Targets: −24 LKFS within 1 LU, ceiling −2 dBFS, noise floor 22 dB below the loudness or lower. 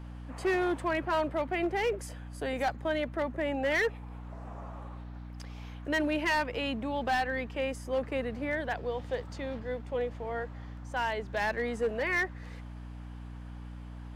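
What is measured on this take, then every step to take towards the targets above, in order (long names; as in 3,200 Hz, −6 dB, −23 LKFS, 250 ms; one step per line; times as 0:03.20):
share of clipped samples 1.3%; peaks flattened at −23.5 dBFS; mains hum 60 Hz; hum harmonics up to 300 Hz; level of the hum −40 dBFS; integrated loudness −32.0 LKFS; sample peak −23.5 dBFS; target loudness −24.0 LKFS
→ clipped peaks rebuilt −23.5 dBFS
hum removal 60 Hz, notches 5
level +8 dB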